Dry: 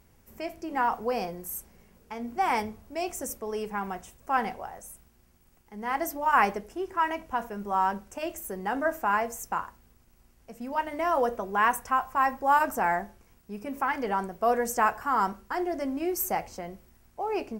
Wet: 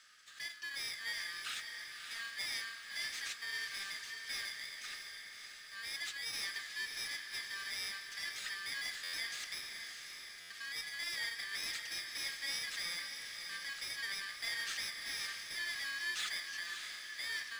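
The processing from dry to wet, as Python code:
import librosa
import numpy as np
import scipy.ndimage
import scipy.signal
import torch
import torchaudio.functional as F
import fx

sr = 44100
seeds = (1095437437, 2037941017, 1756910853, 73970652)

y = fx.bit_reversed(x, sr, seeds[0], block=32)
y = fx.peak_eq(y, sr, hz=8700.0, db=-3.5, octaves=2.2)
y = 10.0 ** (-27.0 / 20.0) * np.tanh(y / 10.0 ** (-27.0 / 20.0))
y = scipy.signal.sosfilt(scipy.signal.cheby1(6, 6, 1200.0, 'highpass', fs=sr, output='sos'), y)
y = fx.power_curve(y, sr, exponent=0.7)
y = fx.air_absorb(y, sr, metres=77.0)
y = fx.echo_diffused(y, sr, ms=603, feedback_pct=57, wet_db=-6.0)
y = fx.buffer_glitch(y, sr, at_s=(9.03, 10.4), block=512, repeats=8)
y = y * 10.0 ** (2.0 / 20.0)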